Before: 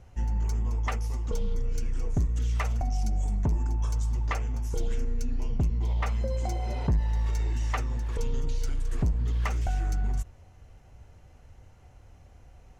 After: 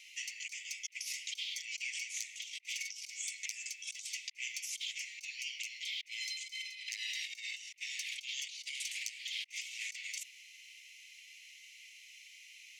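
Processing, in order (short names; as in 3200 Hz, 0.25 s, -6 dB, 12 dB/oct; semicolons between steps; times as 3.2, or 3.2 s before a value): steep high-pass 2100 Hz 96 dB/oct; high shelf 4900 Hz -11.5 dB; negative-ratio compressor -60 dBFS, ratio -0.5; gain +17 dB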